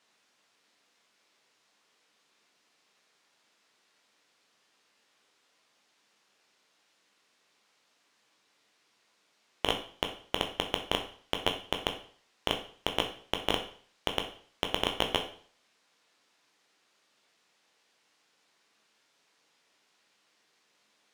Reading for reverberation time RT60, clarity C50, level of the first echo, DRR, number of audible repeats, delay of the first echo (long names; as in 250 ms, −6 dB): 0.50 s, 9.5 dB, no echo audible, 3.5 dB, no echo audible, no echo audible